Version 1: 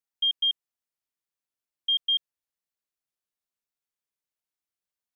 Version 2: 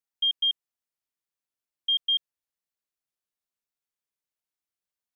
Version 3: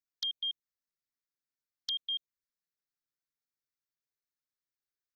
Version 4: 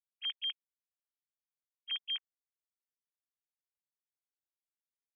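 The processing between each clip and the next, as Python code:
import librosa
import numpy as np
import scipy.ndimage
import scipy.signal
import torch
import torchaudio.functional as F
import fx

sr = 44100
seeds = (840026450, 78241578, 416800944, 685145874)

y1 = x
y2 = fx.env_flanger(y1, sr, rest_ms=7.3, full_db=-26.0)
y2 = fx.fixed_phaser(y2, sr, hz=2900.0, stages=6)
y3 = fx.sine_speech(y2, sr)
y3 = F.gain(torch.from_numpy(y3), -2.0).numpy()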